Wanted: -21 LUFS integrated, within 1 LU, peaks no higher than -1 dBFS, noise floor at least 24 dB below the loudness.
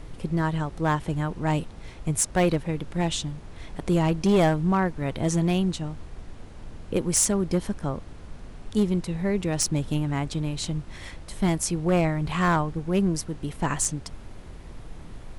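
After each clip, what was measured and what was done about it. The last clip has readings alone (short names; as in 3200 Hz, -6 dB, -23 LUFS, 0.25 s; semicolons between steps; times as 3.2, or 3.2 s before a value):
clipped 0.7%; flat tops at -15.0 dBFS; noise floor -43 dBFS; noise floor target -50 dBFS; loudness -26.0 LUFS; peak -15.0 dBFS; loudness target -21.0 LUFS
-> clip repair -15 dBFS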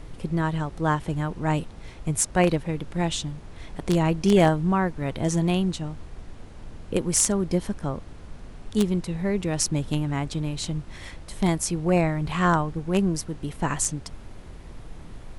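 clipped 0.0%; noise floor -43 dBFS; noise floor target -49 dBFS
-> noise print and reduce 6 dB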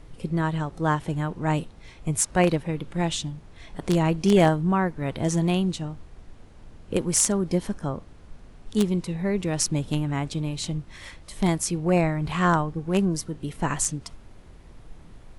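noise floor -48 dBFS; noise floor target -49 dBFS
-> noise print and reduce 6 dB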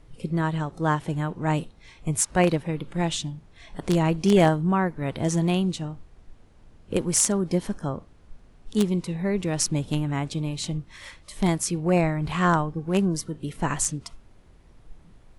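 noise floor -54 dBFS; loudness -25.0 LUFS; peak -6.0 dBFS; loudness target -21.0 LUFS
-> gain +4 dB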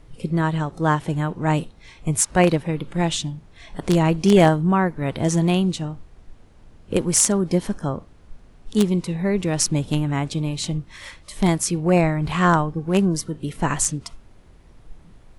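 loudness -21.0 LUFS; peak -2.0 dBFS; noise floor -50 dBFS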